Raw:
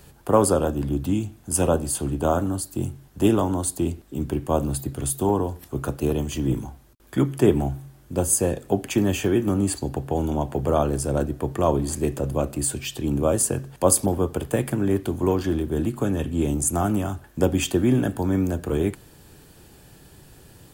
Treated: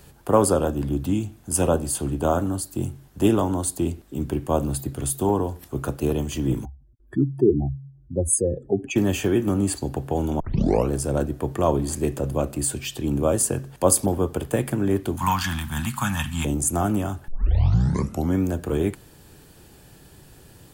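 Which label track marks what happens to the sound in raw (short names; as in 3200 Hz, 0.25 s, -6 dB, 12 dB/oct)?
6.650000	8.960000	spectral contrast raised exponent 2.4
10.400000	10.400000	tape start 0.50 s
15.170000	16.450000	EQ curve 220 Hz 0 dB, 410 Hz -30 dB, 900 Hz +11 dB
17.280000	17.280000	tape start 1.09 s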